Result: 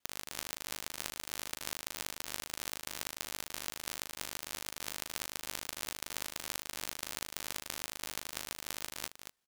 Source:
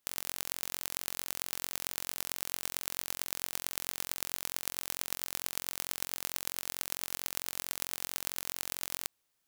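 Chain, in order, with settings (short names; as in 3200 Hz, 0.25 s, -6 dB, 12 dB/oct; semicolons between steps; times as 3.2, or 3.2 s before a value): local time reversal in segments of 42 ms; high shelf 9600 Hz -9 dB; echo 0.231 s -8 dB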